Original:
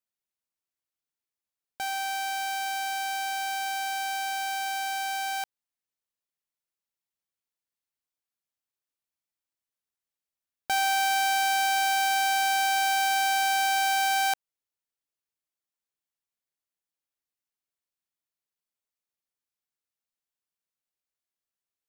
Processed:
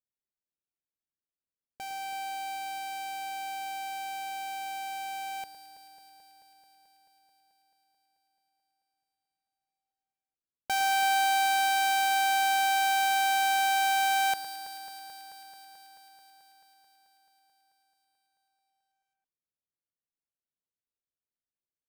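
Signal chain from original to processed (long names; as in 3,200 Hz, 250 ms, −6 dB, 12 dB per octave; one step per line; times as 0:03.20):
adaptive Wiener filter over 41 samples
delay that swaps between a low-pass and a high-pass 109 ms, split 2,100 Hz, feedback 88%, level −11 dB
level −1.5 dB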